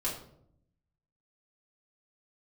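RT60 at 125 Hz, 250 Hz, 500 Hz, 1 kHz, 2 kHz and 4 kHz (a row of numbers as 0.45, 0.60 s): 1.2, 1.0, 0.75, 0.60, 0.45, 0.40 s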